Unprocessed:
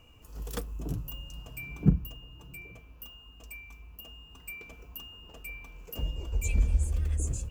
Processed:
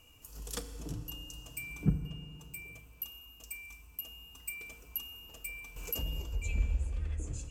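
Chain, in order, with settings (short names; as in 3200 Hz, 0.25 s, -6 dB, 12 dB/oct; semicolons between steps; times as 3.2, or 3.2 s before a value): treble ducked by the level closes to 2500 Hz, closed at -24.5 dBFS; pre-emphasis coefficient 0.8; FDN reverb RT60 2.3 s, low-frequency decay 0.8×, high-frequency decay 0.7×, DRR 8.5 dB; 5.76–6.22 fast leveller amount 50%; gain +7.5 dB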